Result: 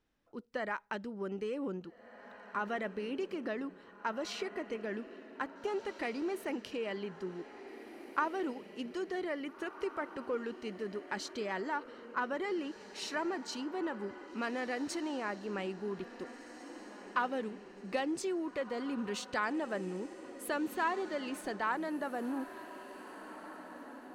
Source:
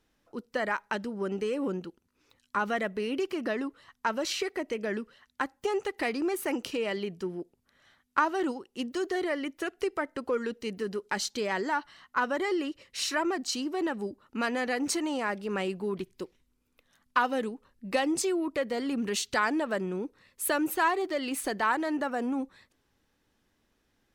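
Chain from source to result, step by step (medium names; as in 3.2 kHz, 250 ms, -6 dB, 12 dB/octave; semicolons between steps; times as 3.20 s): low-pass 3.9 kHz 6 dB/octave; echo that smears into a reverb 1773 ms, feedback 40%, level -12.5 dB; trim -6.5 dB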